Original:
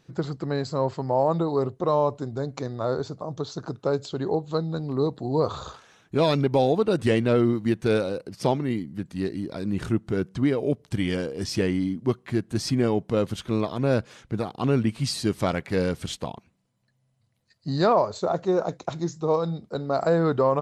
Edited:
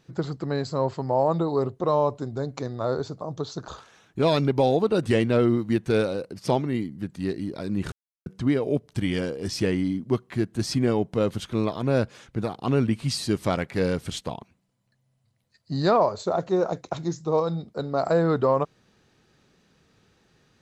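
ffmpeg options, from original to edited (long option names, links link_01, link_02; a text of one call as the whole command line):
ffmpeg -i in.wav -filter_complex "[0:a]asplit=4[link_01][link_02][link_03][link_04];[link_01]atrim=end=3.682[link_05];[link_02]atrim=start=5.638:end=9.88,asetpts=PTS-STARTPTS,afade=type=out:start_time=4.238:duration=0.004:curve=hsin[link_06];[link_03]atrim=start=9.88:end=10.22,asetpts=PTS-STARTPTS,volume=0[link_07];[link_04]atrim=start=10.22,asetpts=PTS-STARTPTS,afade=type=in:duration=0.004:curve=hsin[link_08];[link_06][link_07][link_08]concat=n=3:v=0:a=1[link_09];[link_05][link_09]acrossfade=duration=0.004:curve1=hsin:curve2=hsin" out.wav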